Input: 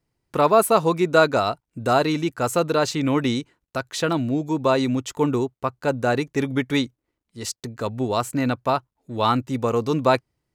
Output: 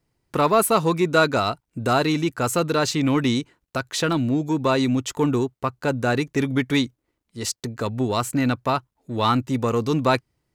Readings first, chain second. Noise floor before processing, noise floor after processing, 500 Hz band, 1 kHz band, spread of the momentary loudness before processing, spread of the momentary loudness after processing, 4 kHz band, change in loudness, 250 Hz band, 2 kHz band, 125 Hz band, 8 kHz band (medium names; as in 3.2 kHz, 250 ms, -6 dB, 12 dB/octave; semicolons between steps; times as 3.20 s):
-83 dBFS, -79 dBFS, -2.0 dB, -1.0 dB, 12 LU, 9 LU, +2.0 dB, 0.0 dB, +1.5 dB, +1.0 dB, +2.0 dB, +3.0 dB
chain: dynamic bell 630 Hz, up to -5 dB, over -30 dBFS, Q 1; in parallel at -6.5 dB: saturation -22 dBFS, distortion -10 dB